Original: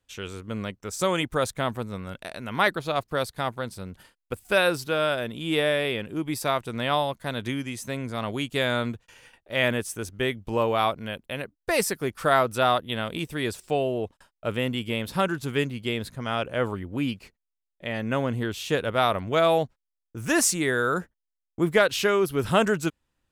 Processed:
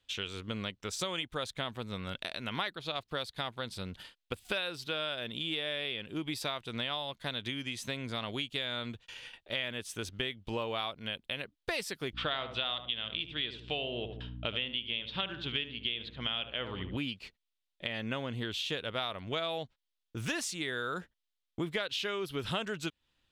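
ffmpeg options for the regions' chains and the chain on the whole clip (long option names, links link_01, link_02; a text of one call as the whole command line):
ffmpeg -i in.wav -filter_complex "[0:a]asettb=1/sr,asplit=3[link_01][link_02][link_03];[link_01]atrim=end=12.134[link_04];[link_02]atrim=start=12.13:end=16.97,asetpts=PTS-STARTPTS,afade=type=in:duration=0.004:curve=qsin,afade=type=out:start_time=4.836:duration=0.004:curve=qsin,lowpass=frequency=3200:width_type=q:width=3.2,aeval=exprs='val(0)+0.0126*(sin(2*PI*60*n/s)+sin(2*PI*2*60*n/s)/2+sin(2*PI*3*60*n/s)/3+sin(2*PI*4*60*n/s)/4+sin(2*PI*5*60*n/s)/5)':channel_layout=same,asplit=2[link_05][link_06];[link_06]adelay=74,lowpass=frequency=1200:poles=1,volume=-8.5dB,asplit=2[link_07][link_08];[link_08]adelay=74,lowpass=frequency=1200:poles=1,volume=0.34,asplit=2[link_09][link_10];[link_10]adelay=74,lowpass=frequency=1200:poles=1,volume=0.34,asplit=2[link_11][link_12];[link_12]adelay=74,lowpass=frequency=1200:poles=1,volume=0.34[link_13];[link_05][link_07][link_09][link_11][link_13]amix=inputs=5:normalize=0,atrim=end_sample=213444[link_14];[link_03]atrim=start=16.966[link_15];[link_04][link_14]acrossfade=duration=0.004:curve1=hsin:curve2=qsin[link_16];[link_16][link_15]acrossfade=duration=0.004:curve1=qsin:curve2=hsin,equalizer=frequency=3500:width_type=o:width=1.3:gain=14.5,acompressor=threshold=-30dB:ratio=5,highshelf=frequency=4700:gain=-5,volume=-2.5dB" out.wav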